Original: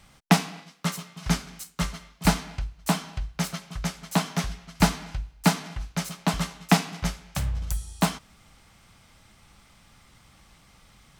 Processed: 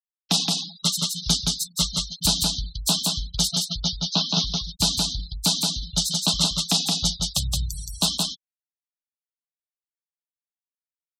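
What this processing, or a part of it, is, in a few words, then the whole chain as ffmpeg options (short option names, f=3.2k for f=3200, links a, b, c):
over-bright horn tweeter: -filter_complex "[0:a]highshelf=f=2.8k:t=q:w=3:g=11,alimiter=limit=-8.5dB:level=0:latency=1:release=113,asettb=1/sr,asplit=3[a][b][c];[a]atrim=end=3.524[d];[b]atrim=start=3.52:end=4.47,asetpts=PTS-STARTPTS,afade=t=in:d=0.004:c=qsin,afade=t=out:st=0.946:d=0.004:c=qsin,lowpass=f=5.6k:w=0.5412,lowpass=f=5.6k:w=1.3066[e];[c]atrim=start=4.466[f];[d][e]acrossfade=d=0.004:c1=hsin:c2=qsin[g];[g][f]acrossfade=d=0.004:c1=qsin:c2=hsin,afftfilt=real='re*gte(hypot(re,im),0.0398)':imag='im*gte(hypot(re,im),0.0398)':win_size=1024:overlap=0.75,aecho=1:1:171:0.708"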